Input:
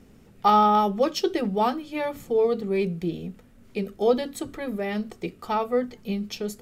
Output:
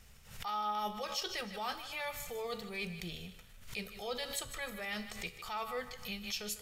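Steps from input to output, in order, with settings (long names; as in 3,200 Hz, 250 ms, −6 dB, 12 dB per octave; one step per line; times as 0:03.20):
guitar amp tone stack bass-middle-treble 10-0-10
reversed playback
downward compressor 6 to 1, threshold −41 dBFS, peak gain reduction 16.5 dB
reversed playback
tuned comb filter 70 Hz, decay 0.65 s, harmonics all, mix 50%
feedback echo with a high-pass in the loop 152 ms, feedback 39%, high-pass 420 Hz, level −12 dB
background raised ahead of every attack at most 92 dB per second
level +9.5 dB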